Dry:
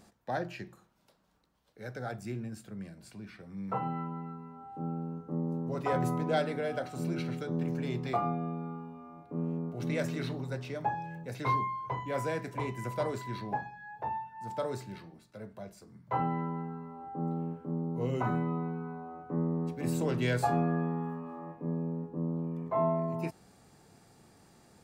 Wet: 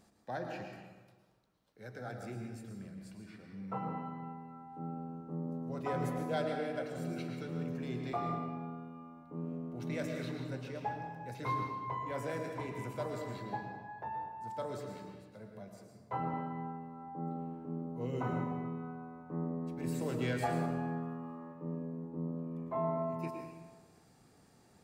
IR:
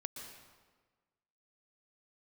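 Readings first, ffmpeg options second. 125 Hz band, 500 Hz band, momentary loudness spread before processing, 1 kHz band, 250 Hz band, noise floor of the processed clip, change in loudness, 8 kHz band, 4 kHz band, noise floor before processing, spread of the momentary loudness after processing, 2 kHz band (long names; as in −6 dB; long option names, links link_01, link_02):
−5.5 dB, −4.5 dB, 14 LU, −4.5 dB, −4.5 dB, −64 dBFS, −5.0 dB, −5.0 dB, −5.0 dB, −62 dBFS, 13 LU, −4.5 dB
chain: -filter_complex "[1:a]atrim=start_sample=2205,asetrate=48510,aresample=44100[link_01];[0:a][link_01]afir=irnorm=-1:irlink=0,volume=-1.5dB"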